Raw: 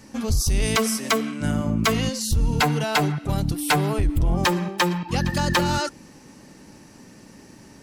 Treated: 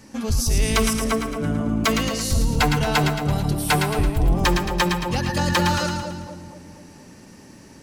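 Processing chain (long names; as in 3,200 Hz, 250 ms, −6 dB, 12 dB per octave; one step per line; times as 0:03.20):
0:00.93–0:01.69: high-shelf EQ 2,100 Hz −11.5 dB
echo with a time of its own for lows and highs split 820 Hz, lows 239 ms, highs 111 ms, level −5.5 dB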